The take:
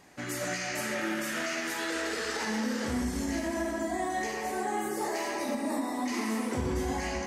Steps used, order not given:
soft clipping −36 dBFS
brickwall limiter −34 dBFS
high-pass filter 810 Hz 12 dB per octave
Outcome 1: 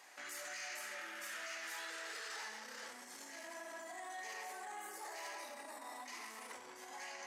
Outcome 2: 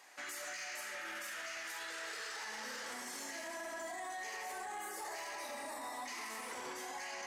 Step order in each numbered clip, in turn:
brickwall limiter, then soft clipping, then high-pass filter
high-pass filter, then brickwall limiter, then soft clipping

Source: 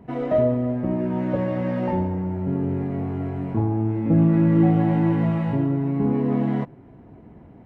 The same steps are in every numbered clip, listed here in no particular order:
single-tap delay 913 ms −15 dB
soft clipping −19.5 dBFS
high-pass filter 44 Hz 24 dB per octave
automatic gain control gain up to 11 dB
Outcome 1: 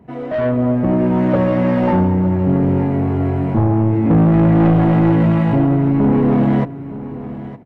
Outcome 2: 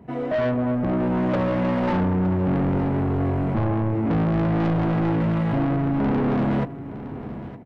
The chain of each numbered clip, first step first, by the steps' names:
high-pass filter, then soft clipping, then automatic gain control, then single-tap delay
automatic gain control, then high-pass filter, then soft clipping, then single-tap delay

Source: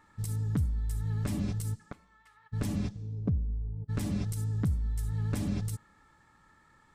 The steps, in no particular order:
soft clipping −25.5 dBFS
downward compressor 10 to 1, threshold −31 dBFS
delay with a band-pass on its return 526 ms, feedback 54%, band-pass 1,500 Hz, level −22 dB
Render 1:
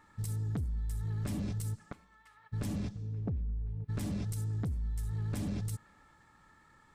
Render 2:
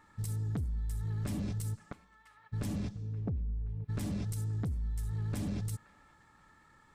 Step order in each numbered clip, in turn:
soft clipping, then downward compressor, then delay with a band-pass on its return
delay with a band-pass on its return, then soft clipping, then downward compressor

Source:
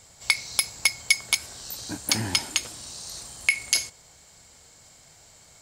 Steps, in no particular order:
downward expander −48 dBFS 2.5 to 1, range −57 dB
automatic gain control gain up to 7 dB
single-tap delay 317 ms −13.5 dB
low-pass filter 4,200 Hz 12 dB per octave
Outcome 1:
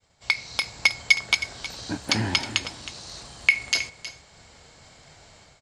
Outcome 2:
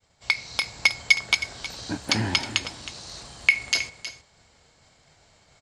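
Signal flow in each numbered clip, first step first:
low-pass filter, then automatic gain control, then downward expander, then single-tap delay
low-pass filter, then downward expander, then single-tap delay, then automatic gain control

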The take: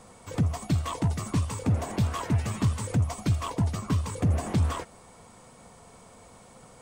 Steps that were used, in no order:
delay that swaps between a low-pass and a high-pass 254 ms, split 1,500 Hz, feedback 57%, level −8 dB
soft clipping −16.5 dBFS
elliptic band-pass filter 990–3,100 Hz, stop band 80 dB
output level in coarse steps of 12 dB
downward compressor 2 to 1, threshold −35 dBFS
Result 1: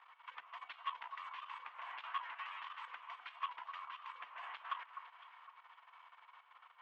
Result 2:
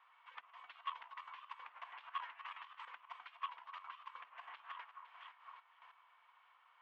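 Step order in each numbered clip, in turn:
soft clipping, then elliptic band-pass filter, then downward compressor, then output level in coarse steps, then delay that swaps between a low-pass and a high-pass
delay that swaps between a low-pass and a high-pass, then soft clipping, then downward compressor, then output level in coarse steps, then elliptic band-pass filter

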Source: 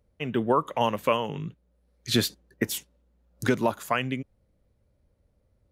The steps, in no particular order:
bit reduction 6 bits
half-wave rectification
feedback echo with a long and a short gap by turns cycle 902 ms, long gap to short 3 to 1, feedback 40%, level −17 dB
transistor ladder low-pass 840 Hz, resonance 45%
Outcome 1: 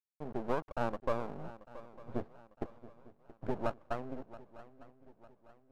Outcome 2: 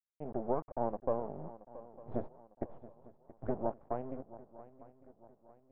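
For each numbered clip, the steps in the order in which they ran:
bit reduction, then transistor ladder low-pass, then half-wave rectification, then feedback echo with a long and a short gap by turns
bit reduction, then feedback echo with a long and a short gap by turns, then half-wave rectification, then transistor ladder low-pass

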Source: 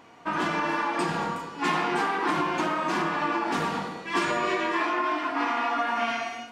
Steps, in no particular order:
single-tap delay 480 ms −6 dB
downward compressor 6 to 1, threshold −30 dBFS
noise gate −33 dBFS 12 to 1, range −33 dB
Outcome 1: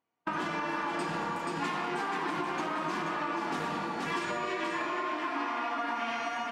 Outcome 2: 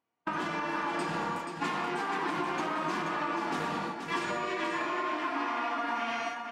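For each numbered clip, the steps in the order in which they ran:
single-tap delay, then noise gate, then downward compressor
noise gate, then downward compressor, then single-tap delay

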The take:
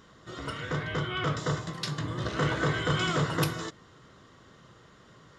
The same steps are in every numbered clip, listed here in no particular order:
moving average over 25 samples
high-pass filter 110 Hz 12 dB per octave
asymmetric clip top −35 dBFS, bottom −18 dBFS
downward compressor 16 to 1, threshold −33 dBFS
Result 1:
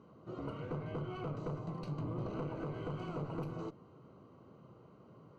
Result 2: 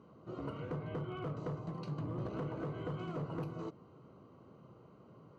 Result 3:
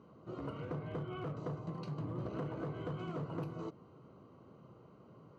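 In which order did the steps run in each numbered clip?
high-pass filter, then asymmetric clip, then downward compressor, then moving average
high-pass filter, then downward compressor, then moving average, then asymmetric clip
downward compressor, then moving average, then asymmetric clip, then high-pass filter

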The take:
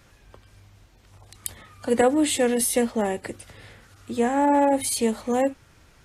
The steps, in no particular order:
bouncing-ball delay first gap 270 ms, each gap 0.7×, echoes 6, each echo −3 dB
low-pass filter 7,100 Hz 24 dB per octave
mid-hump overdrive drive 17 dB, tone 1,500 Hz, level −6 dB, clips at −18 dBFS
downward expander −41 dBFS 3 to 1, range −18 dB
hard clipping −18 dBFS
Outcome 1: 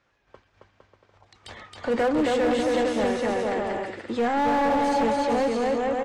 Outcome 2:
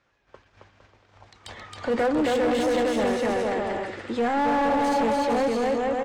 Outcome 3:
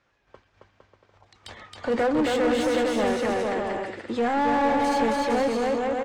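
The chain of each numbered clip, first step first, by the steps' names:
downward expander, then bouncing-ball delay, then mid-hump overdrive, then low-pass filter, then hard clipping
bouncing-ball delay, then downward expander, then low-pass filter, then hard clipping, then mid-hump overdrive
hard clipping, then low-pass filter, then downward expander, then bouncing-ball delay, then mid-hump overdrive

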